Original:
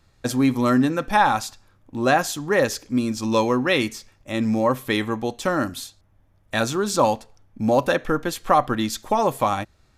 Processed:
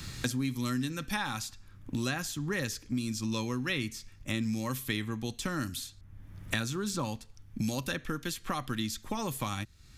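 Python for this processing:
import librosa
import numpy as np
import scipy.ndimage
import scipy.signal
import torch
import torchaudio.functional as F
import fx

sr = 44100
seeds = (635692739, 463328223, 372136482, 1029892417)

y = fx.tone_stack(x, sr, knobs='6-0-2')
y = fx.band_squash(y, sr, depth_pct=100)
y = y * 10.0 ** (8.5 / 20.0)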